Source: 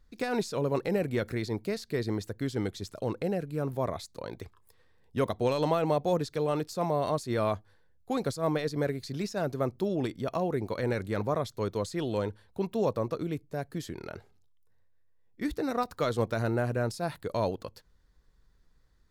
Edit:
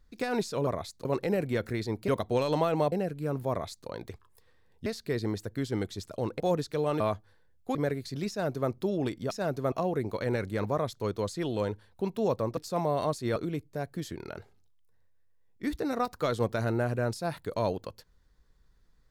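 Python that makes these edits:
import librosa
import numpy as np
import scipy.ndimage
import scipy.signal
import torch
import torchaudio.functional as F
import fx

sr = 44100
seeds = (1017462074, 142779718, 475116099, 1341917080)

y = fx.edit(x, sr, fx.swap(start_s=1.7, length_s=1.54, other_s=5.18, other_length_s=0.84),
    fx.duplicate(start_s=3.82, length_s=0.38, to_s=0.67),
    fx.move(start_s=6.62, length_s=0.79, to_s=13.14),
    fx.cut(start_s=8.16, length_s=0.57),
    fx.duplicate(start_s=9.27, length_s=0.41, to_s=10.29), tone=tone)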